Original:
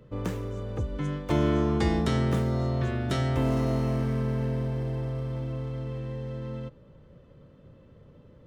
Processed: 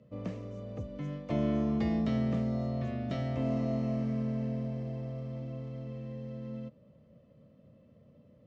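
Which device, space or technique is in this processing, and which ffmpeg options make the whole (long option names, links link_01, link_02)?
car door speaker: -filter_complex "[0:a]highpass=90,equalizer=frequency=220:width_type=q:width=4:gain=8,equalizer=frequency=380:width_type=q:width=4:gain=-8,equalizer=frequency=630:width_type=q:width=4:gain=8,equalizer=frequency=890:width_type=q:width=4:gain=-8,equalizer=frequency=1500:width_type=q:width=4:gain=-10,equalizer=frequency=3500:width_type=q:width=4:gain=-5,lowpass=frequency=6500:width=0.5412,lowpass=frequency=6500:width=1.3066,acrossover=split=4500[link_01][link_02];[link_02]acompressor=threshold=-60dB:ratio=4:attack=1:release=60[link_03];[link_01][link_03]amix=inputs=2:normalize=0,volume=-7dB"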